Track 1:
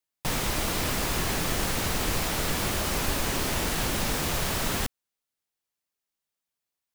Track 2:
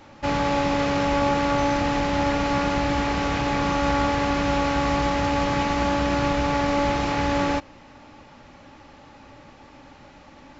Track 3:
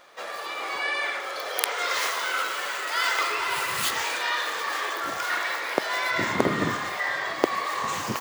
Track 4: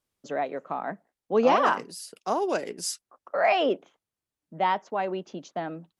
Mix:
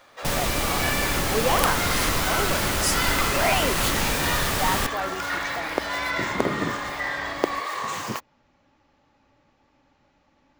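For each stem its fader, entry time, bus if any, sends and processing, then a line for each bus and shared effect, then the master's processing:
+2.5 dB, 0.00 s, no send, dry
-16.5 dB, 0.00 s, no send, dry
-1.0 dB, 0.00 s, no send, dry
-1.5 dB, 0.00 s, no send, tilt +2.5 dB/oct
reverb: off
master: dry

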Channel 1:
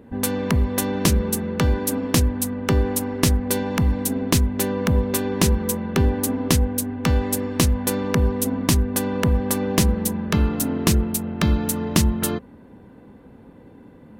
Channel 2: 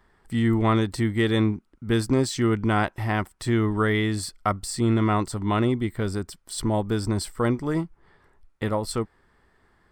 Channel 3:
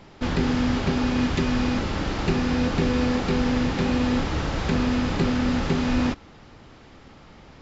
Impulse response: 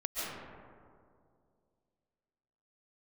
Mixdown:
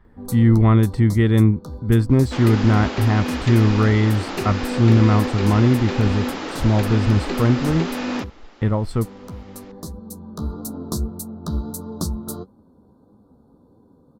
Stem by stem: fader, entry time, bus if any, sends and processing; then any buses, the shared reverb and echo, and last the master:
-3.5 dB, 0.05 s, muted 8.3–8.98, no send, flange 1.6 Hz, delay 8.6 ms, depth 6.4 ms, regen +36%; Chebyshev band-stop 1300–4000 Hz, order 3; auto duck -8 dB, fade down 1.00 s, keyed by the second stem
0.0 dB, 0.00 s, no send, tone controls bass +11 dB, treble -12 dB
+0.5 dB, 2.10 s, no send, HPF 250 Hz 24 dB/oct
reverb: off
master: dry

